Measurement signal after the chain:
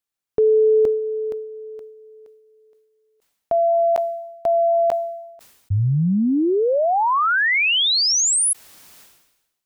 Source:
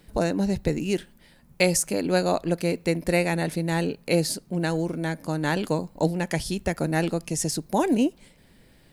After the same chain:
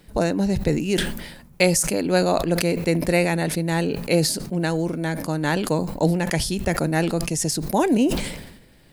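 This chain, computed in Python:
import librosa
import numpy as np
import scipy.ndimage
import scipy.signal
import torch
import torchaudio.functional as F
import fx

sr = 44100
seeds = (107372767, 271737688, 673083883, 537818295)

y = fx.sustainer(x, sr, db_per_s=58.0)
y = y * 10.0 ** (2.5 / 20.0)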